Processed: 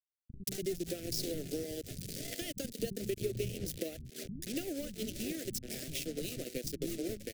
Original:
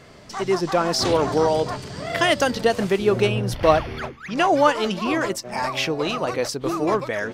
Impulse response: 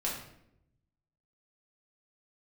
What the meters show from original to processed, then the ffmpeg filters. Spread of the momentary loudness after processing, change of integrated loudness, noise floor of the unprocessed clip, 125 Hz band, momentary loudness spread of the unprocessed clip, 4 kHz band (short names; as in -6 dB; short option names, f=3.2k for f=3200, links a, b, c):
5 LU, -17.5 dB, -42 dBFS, -14.5 dB, 9 LU, -15.5 dB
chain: -filter_complex "[0:a]acrusher=bits=4:mix=0:aa=0.5,lowshelf=f=160:g=-8,acompressor=mode=upward:threshold=-15dB:ratio=2.5,aeval=exprs='sgn(val(0))*max(abs(val(0))-0.0708,0)':c=same,acompressor=threshold=-24dB:ratio=5,asuperstop=centerf=1000:order=4:qfactor=0.56,equalizer=f=2k:w=0.33:g=-12.5,acrossover=split=210[a][b];[b]adelay=180[c];[a][c]amix=inputs=2:normalize=0"